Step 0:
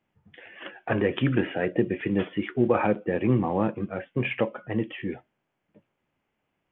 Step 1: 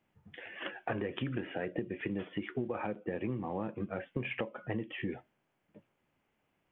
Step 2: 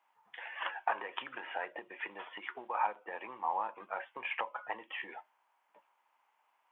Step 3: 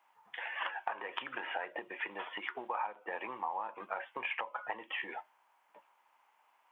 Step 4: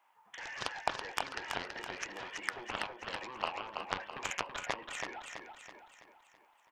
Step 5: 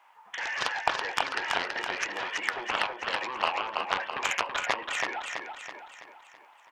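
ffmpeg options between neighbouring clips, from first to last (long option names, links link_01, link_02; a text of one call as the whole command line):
ffmpeg -i in.wav -af "acompressor=threshold=-32dB:ratio=12" out.wav
ffmpeg -i in.wav -af "highpass=frequency=930:width_type=q:width=4.9" out.wav
ffmpeg -i in.wav -af "acompressor=threshold=-38dB:ratio=6,volume=4.5dB" out.wav
ffmpeg -i in.wav -filter_complex "[0:a]aeval=exprs='0.126*(cos(1*acos(clip(val(0)/0.126,-1,1)))-cos(1*PI/2))+0.0282*(cos(7*acos(clip(val(0)/0.126,-1,1)))-cos(7*PI/2))':channel_layout=same,asplit=2[link_01][link_02];[link_02]aecho=0:1:329|658|987|1316|1645|1974:0.531|0.25|0.117|0.0551|0.0259|0.0122[link_03];[link_01][link_03]amix=inputs=2:normalize=0,volume=4.5dB" out.wav
ffmpeg -i in.wav -filter_complex "[0:a]asplit=2[link_01][link_02];[link_02]highpass=frequency=720:poles=1,volume=12dB,asoftclip=type=tanh:threshold=-14dB[link_03];[link_01][link_03]amix=inputs=2:normalize=0,lowpass=frequency=4000:poles=1,volume=-6dB,volume=5dB" out.wav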